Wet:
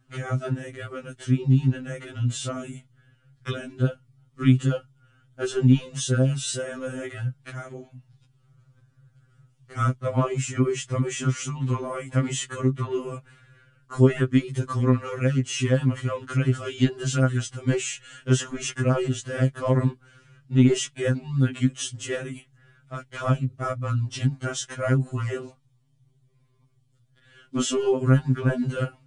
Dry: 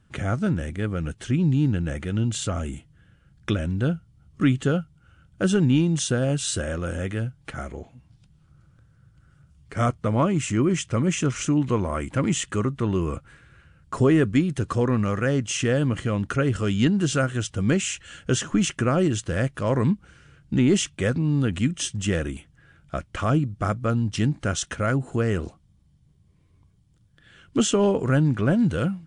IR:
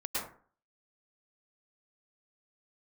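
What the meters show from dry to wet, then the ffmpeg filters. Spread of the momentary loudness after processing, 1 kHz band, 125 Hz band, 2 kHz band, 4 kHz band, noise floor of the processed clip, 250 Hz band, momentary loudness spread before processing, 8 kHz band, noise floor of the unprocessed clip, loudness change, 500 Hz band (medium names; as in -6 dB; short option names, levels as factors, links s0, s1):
15 LU, -2.5 dB, +1.0 dB, -3.0 dB, -2.0 dB, -63 dBFS, -3.0 dB, 10 LU, -2.5 dB, -59 dBFS, -1.0 dB, -1.5 dB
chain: -af "afftfilt=real='re*2.45*eq(mod(b,6),0)':imag='im*2.45*eq(mod(b,6),0)':win_size=2048:overlap=0.75"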